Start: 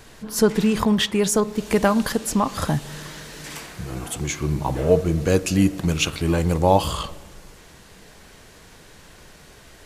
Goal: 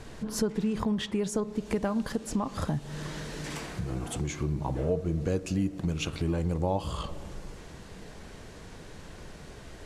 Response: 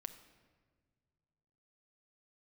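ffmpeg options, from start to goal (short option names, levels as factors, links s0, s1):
-af "lowpass=9800,tiltshelf=f=850:g=4,acompressor=threshold=0.0251:ratio=2.5"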